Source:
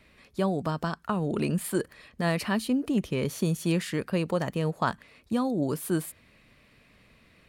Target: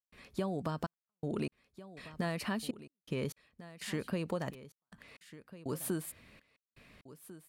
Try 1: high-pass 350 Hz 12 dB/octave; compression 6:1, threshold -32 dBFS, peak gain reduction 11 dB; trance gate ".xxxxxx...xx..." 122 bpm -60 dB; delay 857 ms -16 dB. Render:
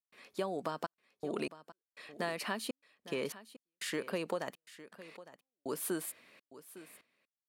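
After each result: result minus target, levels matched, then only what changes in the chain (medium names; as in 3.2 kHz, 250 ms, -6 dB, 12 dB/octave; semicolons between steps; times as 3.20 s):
echo 540 ms early; 250 Hz band -3.5 dB
change: delay 1397 ms -16 dB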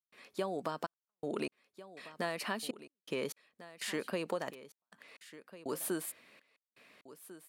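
250 Hz band -3.5 dB
remove: high-pass 350 Hz 12 dB/octave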